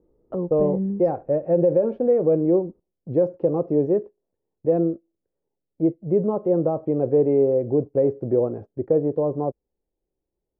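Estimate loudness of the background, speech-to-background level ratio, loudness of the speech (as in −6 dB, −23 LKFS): −28.5 LKFS, 6.5 dB, −22.0 LKFS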